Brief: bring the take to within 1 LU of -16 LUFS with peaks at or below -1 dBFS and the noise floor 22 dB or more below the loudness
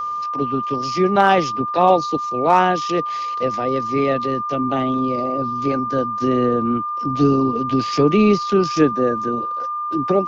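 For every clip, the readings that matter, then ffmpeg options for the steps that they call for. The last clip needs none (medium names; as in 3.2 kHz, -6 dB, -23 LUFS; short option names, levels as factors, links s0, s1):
steady tone 1.2 kHz; tone level -22 dBFS; loudness -19.0 LUFS; peak level -3.0 dBFS; loudness target -16.0 LUFS
-> -af "bandreject=f=1200:w=30"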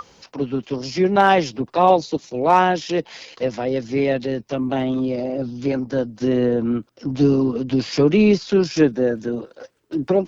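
steady tone not found; loudness -20.0 LUFS; peak level -3.5 dBFS; loudness target -16.0 LUFS
-> -af "volume=1.58,alimiter=limit=0.891:level=0:latency=1"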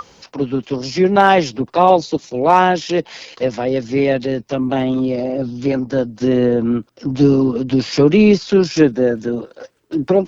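loudness -16.5 LUFS; peak level -1.0 dBFS; noise floor -53 dBFS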